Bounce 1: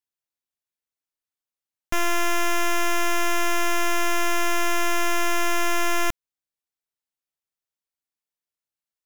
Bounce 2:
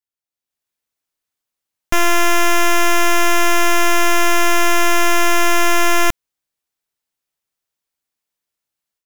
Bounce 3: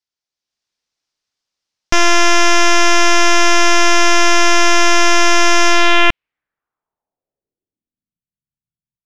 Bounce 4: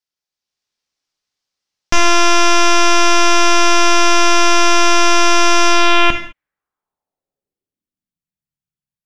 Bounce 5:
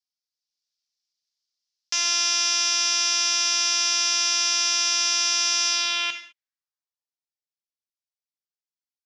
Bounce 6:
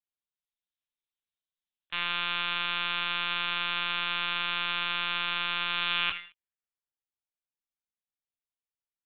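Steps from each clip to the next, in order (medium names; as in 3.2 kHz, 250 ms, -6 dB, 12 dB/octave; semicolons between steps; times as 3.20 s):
level rider gain up to 11.5 dB; trim -3 dB
low-pass sweep 5.3 kHz -> 150 Hz, 5.67–8.25 s; trim +2.5 dB
gated-style reverb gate 230 ms falling, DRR 6 dB; trim -1 dB
band-pass filter 5.1 kHz, Q 2.2
dynamic bell 1.4 kHz, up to +5 dB, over -38 dBFS, Q 0.94; LPC vocoder at 8 kHz pitch kept; trim -4.5 dB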